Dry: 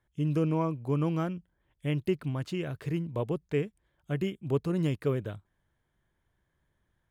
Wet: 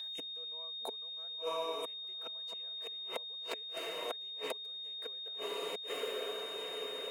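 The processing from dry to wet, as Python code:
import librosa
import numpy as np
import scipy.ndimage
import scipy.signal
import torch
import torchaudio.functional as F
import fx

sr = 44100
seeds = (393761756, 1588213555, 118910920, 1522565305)

y = fx.high_shelf(x, sr, hz=5300.0, db=9.5)
y = fx.echo_diffused(y, sr, ms=1005, feedback_pct=54, wet_db=-8.0)
y = fx.gate_flip(y, sr, shuts_db=-25.0, range_db=-37)
y = y + 10.0 ** (-49.0 / 20.0) * np.sin(2.0 * np.pi * 3700.0 * np.arange(len(y)) / sr)
y = scipy.signal.sosfilt(scipy.signal.cheby1(3, 1.0, 540.0, 'highpass', fs=sr, output='sos'), y)
y = y + 0.54 * np.pad(y, (int(4.4 * sr / 1000.0), 0))[:len(y)]
y = fx.band_squash(y, sr, depth_pct=40)
y = F.gain(torch.from_numpy(y), 6.5).numpy()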